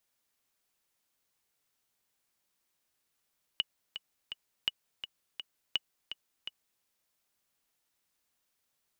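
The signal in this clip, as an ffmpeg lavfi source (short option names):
-f lavfi -i "aevalsrc='pow(10,(-15-10.5*gte(mod(t,3*60/167),60/167))/20)*sin(2*PI*2930*mod(t,60/167))*exp(-6.91*mod(t,60/167)/0.03)':d=3.23:s=44100"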